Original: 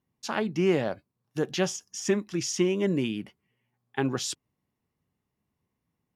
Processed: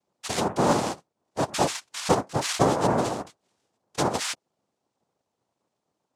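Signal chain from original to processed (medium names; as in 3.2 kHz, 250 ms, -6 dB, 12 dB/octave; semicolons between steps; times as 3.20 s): noise-vocoded speech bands 2; trim +2.5 dB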